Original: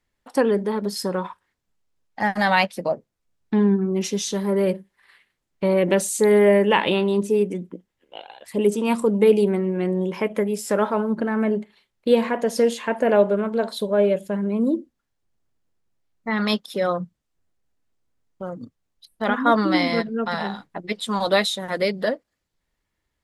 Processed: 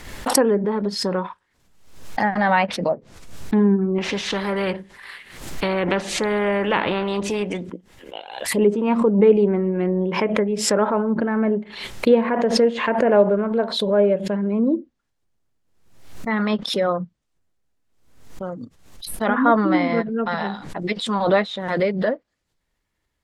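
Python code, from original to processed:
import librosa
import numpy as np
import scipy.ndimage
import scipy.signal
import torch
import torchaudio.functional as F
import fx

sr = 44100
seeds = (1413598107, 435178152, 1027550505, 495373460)

y = fx.spectral_comp(x, sr, ratio=2.0, at=(3.98, 7.7))
y = fx.env_lowpass_down(y, sr, base_hz=1900.0, full_db=-18.5)
y = fx.pre_swell(y, sr, db_per_s=70.0)
y = y * librosa.db_to_amplitude(1.5)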